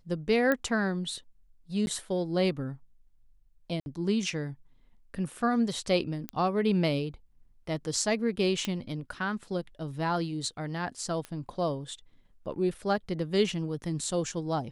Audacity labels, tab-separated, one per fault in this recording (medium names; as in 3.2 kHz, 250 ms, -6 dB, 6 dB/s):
0.520000	0.520000	pop -14 dBFS
1.860000	1.870000	dropout 11 ms
3.800000	3.860000	dropout 61 ms
6.290000	6.290000	pop -19 dBFS
8.650000	8.650000	pop -16 dBFS
11.250000	11.250000	pop -24 dBFS